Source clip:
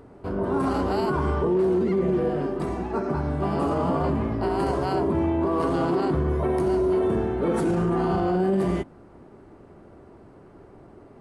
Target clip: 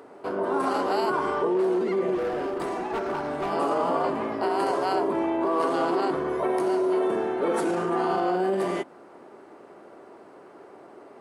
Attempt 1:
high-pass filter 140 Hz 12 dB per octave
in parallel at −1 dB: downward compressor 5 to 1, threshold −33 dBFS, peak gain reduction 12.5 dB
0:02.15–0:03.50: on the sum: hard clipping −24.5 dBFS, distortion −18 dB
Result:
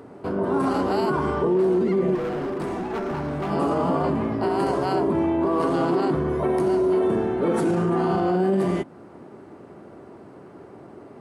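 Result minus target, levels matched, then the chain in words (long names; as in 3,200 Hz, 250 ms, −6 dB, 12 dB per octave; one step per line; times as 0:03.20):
125 Hz band +10.5 dB
high-pass filter 420 Hz 12 dB per octave
in parallel at −1 dB: downward compressor 5 to 1, threshold −33 dBFS, peak gain reduction 10 dB
0:02.15–0:03.50: on the sum: hard clipping −24.5 dBFS, distortion −21 dB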